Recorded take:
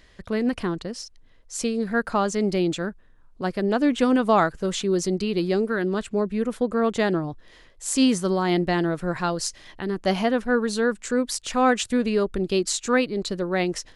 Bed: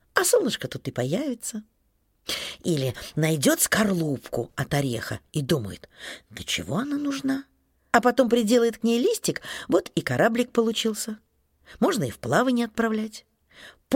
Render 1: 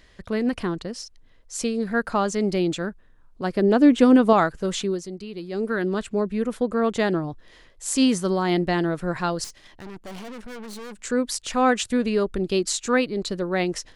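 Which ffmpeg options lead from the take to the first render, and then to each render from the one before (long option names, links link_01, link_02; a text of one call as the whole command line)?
ffmpeg -i in.wav -filter_complex "[0:a]asettb=1/sr,asplit=3[link_01][link_02][link_03];[link_01]atrim=end=3.544[link_04];[link_02]atrim=start=3.54:end=4.33,asetpts=PTS-STARTPTS,afade=type=in:duration=0.004:curve=qsin,afade=type=out:start_time=0.786:duration=0.004:curve=qsin,equalizer=frequency=320:width_type=o:width=1.6:gain=6.5[link_05];[link_03]atrim=start=4.326[link_06];[link_04][link_05]acrossfade=duration=0.004:curve1=hsin:curve2=qsin[link_07];[link_07][link_06]acrossfade=duration=0.004:curve1=qsin:curve2=hsin,asettb=1/sr,asplit=3[link_08][link_09][link_10];[link_08]atrim=end=9.444[link_11];[link_09]atrim=start=9.44:end=10.99,asetpts=PTS-STARTPTS,afade=type=in:duration=0.004:curve=qsin,afade=type=out:start_time=1.546:duration=0.004:curve=qsin,aeval=exprs='(tanh(63.1*val(0)+0.7)-tanh(0.7))/63.1':channel_layout=same[link_12];[link_10]atrim=start=10.986[link_13];[link_11][link_12]acrossfade=duration=0.004:curve1=hsin:curve2=qsin[link_14];[link_14][link_13]acrossfade=duration=0.004:curve1=qsin:curve2=hsin,asplit=3[link_15][link_16][link_17];[link_15]atrim=end=5.01,asetpts=PTS-STARTPTS,afade=type=out:start_time=4.85:duration=0.16:silence=0.298538[link_18];[link_16]atrim=start=5.01:end=5.51,asetpts=PTS-STARTPTS,volume=-10.5dB[link_19];[link_17]atrim=start=5.51,asetpts=PTS-STARTPTS,afade=type=in:duration=0.16:silence=0.298538[link_20];[link_18][link_19][link_20]concat=n=3:v=0:a=1" out.wav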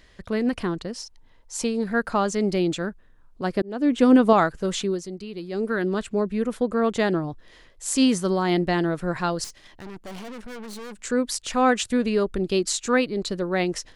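ffmpeg -i in.wav -filter_complex "[0:a]asettb=1/sr,asplit=3[link_01][link_02][link_03];[link_01]atrim=end=0.974[link_04];[link_02]atrim=start=0.97:end=1.84,asetpts=PTS-STARTPTS,afade=type=in:duration=0.004:curve=qsin,afade=type=out:start_time=0.866:duration=0.004:curve=qsin,equalizer=frequency=900:width=5.8:gain=12.5[link_05];[link_03]atrim=start=1.836[link_06];[link_04][link_05]acrossfade=duration=0.004:curve1=hsin:curve2=qsin[link_07];[link_07][link_06]acrossfade=duration=0.004:curve1=qsin:curve2=hsin,asplit=2[link_08][link_09];[link_08]atrim=end=3.62,asetpts=PTS-STARTPTS,afade=type=out:start_time=3.616:duration=0.004:curve=hsin[link_10];[link_09]atrim=start=3.62,asetpts=PTS-STARTPTS,afade=type=in:duration=0.51[link_11];[link_10][link_11]concat=n=2:v=0:a=1" out.wav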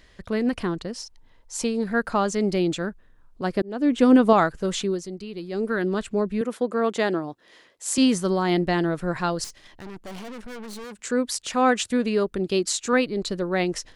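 ffmpeg -i in.wav -filter_complex "[0:a]asettb=1/sr,asplit=3[link_01][link_02][link_03];[link_01]atrim=end=6.414[link_04];[link_02]atrim=start=6.41:end=7.98,asetpts=PTS-STARTPTS,afade=type=in:duration=0.004:curve=qsin,afade=type=out:start_time=1.566:duration=0.004:curve=qsin,highpass=240[link_05];[link_03]atrim=start=7.976[link_06];[link_04][link_05]acrossfade=duration=0.004:curve1=hsin:curve2=qsin[link_07];[link_07][link_06]acrossfade=duration=0.004:curve1=qsin:curve2=hsin,asettb=1/sr,asplit=3[link_08][link_09][link_10];[link_08]atrim=end=10.844[link_11];[link_09]atrim=start=10.84:end=12.93,asetpts=PTS-STARTPTS,afade=type=in:duration=0.004:curve=qsin,afade=type=out:start_time=2.086:duration=0.004:curve=qsin,highpass=frequency=97:poles=1[link_12];[link_10]atrim=start=12.926[link_13];[link_11][link_12]acrossfade=duration=0.004:curve1=hsin:curve2=qsin[link_14];[link_14][link_13]acrossfade=duration=0.004:curve1=qsin:curve2=hsin" out.wav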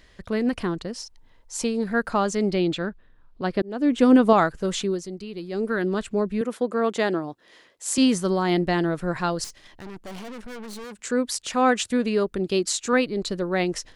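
ffmpeg -i in.wav -filter_complex "[0:a]asettb=1/sr,asplit=3[link_01][link_02][link_03];[link_01]atrim=end=2.494[link_04];[link_02]atrim=start=2.49:end=3.63,asetpts=PTS-STARTPTS,afade=type=in:duration=0.004:curve=qsin,afade=type=out:start_time=1.136:duration=0.004:curve=qsin,highshelf=frequency=5200:width_type=q:width=1.5:gain=-7.5[link_05];[link_03]atrim=start=3.626[link_06];[link_04][link_05]acrossfade=duration=0.004:curve1=hsin:curve2=qsin[link_07];[link_07][link_06]acrossfade=duration=0.004:curve1=qsin:curve2=hsin" out.wav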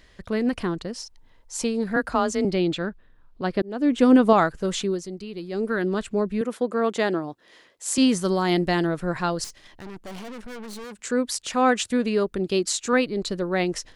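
ffmpeg -i in.wav -filter_complex "[0:a]asettb=1/sr,asplit=3[link_01][link_02][link_03];[link_01]atrim=end=1.964[link_04];[link_02]atrim=start=1.96:end=2.45,asetpts=PTS-STARTPTS,afade=type=in:duration=0.004:curve=qsin,afade=type=out:start_time=0.486:duration=0.004:curve=qsin,afreqshift=25[link_05];[link_03]atrim=start=2.446[link_06];[link_04][link_05]acrossfade=duration=0.004:curve1=hsin:curve2=qsin[link_07];[link_07][link_06]acrossfade=duration=0.004:curve1=qsin:curve2=hsin,asettb=1/sr,asplit=3[link_08][link_09][link_10];[link_08]atrim=end=8.214[link_11];[link_09]atrim=start=8.21:end=8.87,asetpts=PTS-STARTPTS,afade=type=in:duration=0.004:curve=qsin,afade=type=out:start_time=0.656:duration=0.004:curve=qsin,highshelf=frequency=4500:gain=7[link_12];[link_10]atrim=start=8.866[link_13];[link_11][link_12]acrossfade=duration=0.004:curve1=hsin:curve2=qsin[link_14];[link_14][link_13]acrossfade=duration=0.004:curve1=qsin:curve2=hsin" out.wav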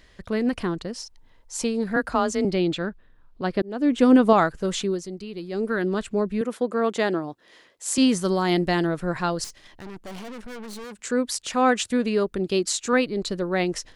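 ffmpeg -i in.wav -af anull out.wav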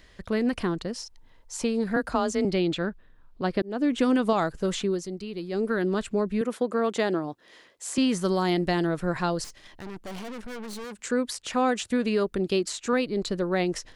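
ffmpeg -i in.wav -filter_complex "[0:a]acrossover=split=1000|2900[link_01][link_02][link_03];[link_01]acompressor=threshold=-21dB:ratio=4[link_04];[link_02]acompressor=threshold=-33dB:ratio=4[link_05];[link_03]acompressor=threshold=-35dB:ratio=4[link_06];[link_04][link_05][link_06]amix=inputs=3:normalize=0" out.wav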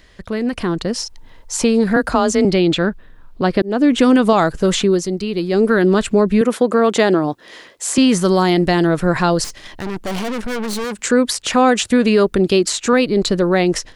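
ffmpeg -i in.wav -filter_complex "[0:a]asplit=2[link_01][link_02];[link_02]alimiter=limit=-22.5dB:level=0:latency=1,volume=-1dB[link_03];[link_01][link_03]amix=inputs=2:normalize=0,dynaudnorm=framelen=510:gausssize=3:maxgain=10dB" out.wav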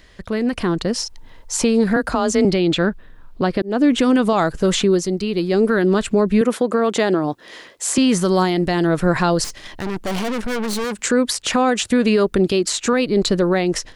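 ffmpeg -i in.wav -af "alimiter=limit=-7.5dB:level=0:latency=1:release=249" out.wav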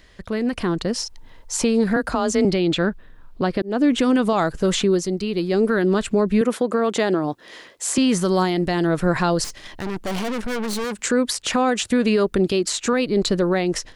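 ffmpeg -i in.wav -af "volume=-2.5dB" out.wav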